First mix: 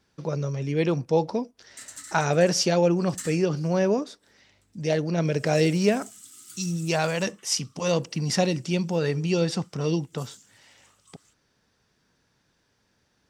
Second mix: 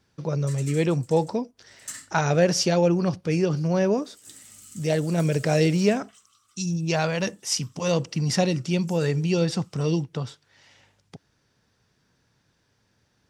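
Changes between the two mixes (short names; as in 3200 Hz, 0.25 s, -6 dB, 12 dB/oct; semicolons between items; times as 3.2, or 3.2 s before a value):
speech: add bell 110 Hz +6 dB 0.93 oct; background: entry -1.30 s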